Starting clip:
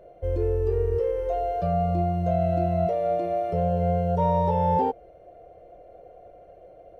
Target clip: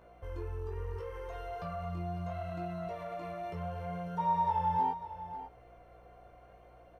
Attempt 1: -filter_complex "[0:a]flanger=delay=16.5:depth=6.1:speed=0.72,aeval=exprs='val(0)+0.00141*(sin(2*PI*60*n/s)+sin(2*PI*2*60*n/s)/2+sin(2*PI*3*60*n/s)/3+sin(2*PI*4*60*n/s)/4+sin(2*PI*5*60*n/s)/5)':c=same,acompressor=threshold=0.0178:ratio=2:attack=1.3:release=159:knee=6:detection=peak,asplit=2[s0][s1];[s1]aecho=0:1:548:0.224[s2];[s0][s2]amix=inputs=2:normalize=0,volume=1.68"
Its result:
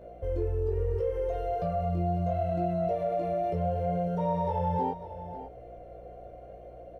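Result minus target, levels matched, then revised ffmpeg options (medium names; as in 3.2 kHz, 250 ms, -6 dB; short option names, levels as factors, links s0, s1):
1 kHz band -5.5 dB
-filter_complex "[0:a]flanger=delay=16.5:depth=6.1:speed=0.72,aeval=exprs='val(0)+0.00141*(sin(2*PI*60*n/s)+sin(2*PI*2*60*n/s)/2+sin(2*PI*3*60*n/s)/3+sin(2*PI*4*60*n/s)/4+sin(2*PI*5*60*n/s)/5)':c=same,acompressor=threshold=0.0178:ratio=2:attack=1.3:release=159:knee=6:detection=peak,lowshelf=f=780:t=q:w=3:g=-8.5,asplit=2[s0][s1];[s1]aecho=0:1:548:0.224[s2];[s0][s2]amix=inputs=2:normalize=0,volume=1.68"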